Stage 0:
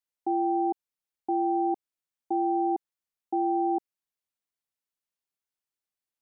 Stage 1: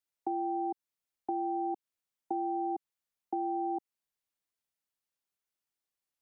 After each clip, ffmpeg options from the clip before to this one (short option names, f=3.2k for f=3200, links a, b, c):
-filter_complex "[0:a]acrossover=split=250|650[a][b][c];[a]acompressor=threshold=-48dB:ratio=4[d];[b]acompressor=threshold=-39dB:ratio=4[e];[c]acompressor=threshold=-37dB:ratio=4[f];[d][e][f]amix=inputs=3:normalize=0"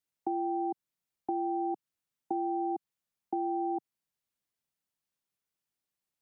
-af "equalizer=f=150:w=0.9:g=7.5"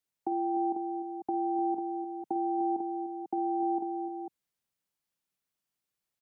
-af "aecho=1:1:50|275|299|478|495:0.2|0.133|0.282|0.168|0.422"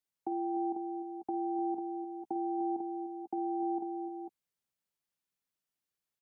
-filter_complex "[0:a]asplit=2[a][b];[b]adelay=12,volume=-14dB[c];[a][c]amix=inputs=2:normalize=0,volume=-4dB"